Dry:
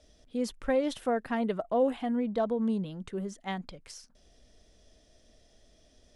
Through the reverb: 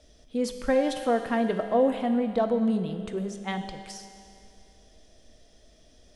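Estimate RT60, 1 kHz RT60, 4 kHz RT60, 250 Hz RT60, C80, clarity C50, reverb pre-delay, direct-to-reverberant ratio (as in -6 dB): 2.4 s, 2.4 s, 2.4 s, 2.4 s, 8.5 dB, 7.5 dB, 5 ms, 6.5 dB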